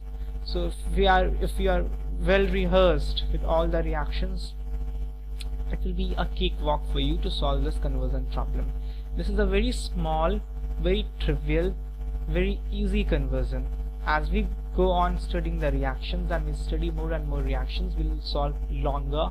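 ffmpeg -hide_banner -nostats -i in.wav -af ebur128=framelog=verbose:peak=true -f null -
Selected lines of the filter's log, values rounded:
Integrated loudness:
  I:         -27.9 LUFS
  Threshold: -37.9 LUFS
Loudness range:
  LRA:         5.0 LU
  Threshold: -48.0 LUFS
  LRA low:   -29.9 LUFS
  LRA high:  -25.0 LUFS
True peak:
  Peak:       -9.3 dBFS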